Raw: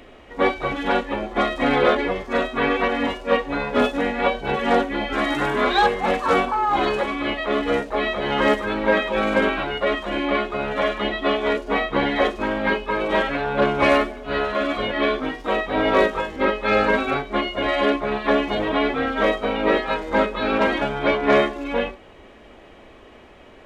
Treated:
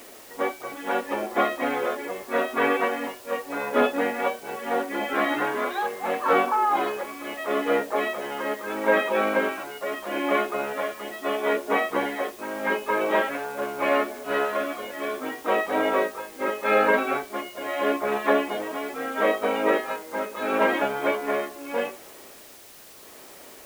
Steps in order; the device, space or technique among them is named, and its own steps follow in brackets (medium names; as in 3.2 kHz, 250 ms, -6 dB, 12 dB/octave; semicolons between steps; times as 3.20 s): shortwave radio (band-pass 290–2600 Hz; tremolo 0.77 Hz, depth 68%; white noise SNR 22 dB)